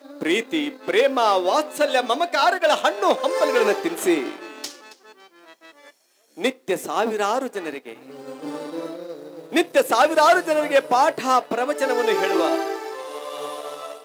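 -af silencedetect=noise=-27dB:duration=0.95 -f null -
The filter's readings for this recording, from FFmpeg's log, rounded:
silence_start: 4.69
silence_end: 6.40 | silence_duration: 1.71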